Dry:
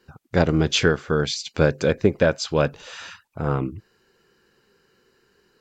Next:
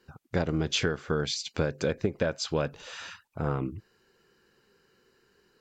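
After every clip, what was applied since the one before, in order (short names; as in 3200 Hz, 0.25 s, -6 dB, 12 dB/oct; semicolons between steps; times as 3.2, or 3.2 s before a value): compressor 6:1, threshold -20 dBFS, peak gain reduction 8.5 dB; gain -3.5 dB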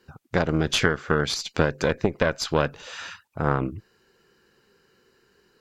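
added harmonics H 2 -6 dB, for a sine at -12.5 dBFS; dynamic EQ 1500 Hz, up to +4 dB, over -43 dBFS, Q 1.1; gain +3.5 dB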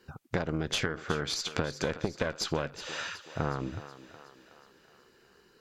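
compressor 6:1, threshold -27 dBFS, peak gain reduction 12.5 dB; thinning echo 0.369 s, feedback 57%, high-pass 290 Hz, level -13 dB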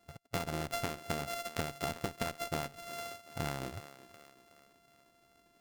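sample sorter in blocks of 64 samples; gain -5.5 dB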